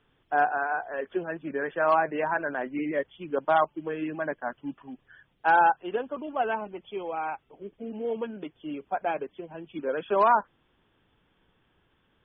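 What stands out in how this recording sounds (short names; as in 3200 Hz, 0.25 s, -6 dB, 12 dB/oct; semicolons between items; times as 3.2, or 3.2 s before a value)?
noise floor -69 dBFS; spectral tilt +1.5 dB/oct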